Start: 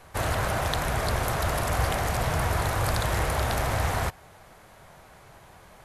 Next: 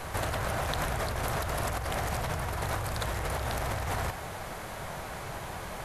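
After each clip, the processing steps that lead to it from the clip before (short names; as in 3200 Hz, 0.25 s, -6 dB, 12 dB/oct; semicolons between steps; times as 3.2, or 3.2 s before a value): negative-ratio compressor -35 dBFS, ratio -1; gain +3.5 dB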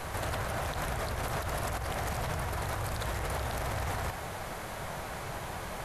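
limiter -24 dBFS, peak gain reduction 9.5 dB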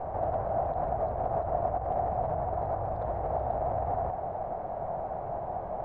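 synth low-pass 710 Hz, resonance Q 4.9; gain -2 dB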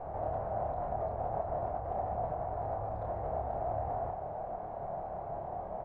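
doubler 28 ms -3.5 dB; gain -6.5 dB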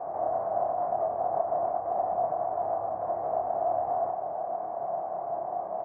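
speaker cabinet 200–2200 Hz, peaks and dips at 330 Hz +5 dB, 690 Hz +9 dB, 1100 Hz +7 dB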